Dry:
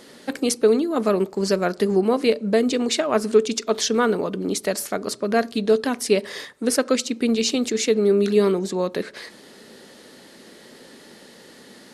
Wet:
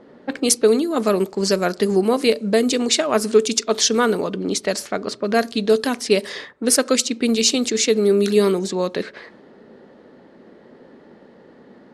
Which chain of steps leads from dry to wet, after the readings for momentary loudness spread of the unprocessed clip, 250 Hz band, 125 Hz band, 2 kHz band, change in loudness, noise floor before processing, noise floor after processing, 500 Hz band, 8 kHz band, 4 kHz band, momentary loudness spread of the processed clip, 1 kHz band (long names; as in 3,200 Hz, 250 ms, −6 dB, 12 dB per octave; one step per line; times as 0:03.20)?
8 LU, +1.5 dB, +1.5 dB, +3.0 dB, +2.5 dB, −47 dBFS, −48 dBFS, +1.5 dB, +7.0 dB, +5.5 dB, 8 LU, +2.0 dB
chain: low-pass that shuts in the quiet parts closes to 920 Hz, open at −16.5 dBFS
high-shelf EQ 4,400 Hz +9.5 dB
level +1.5 dB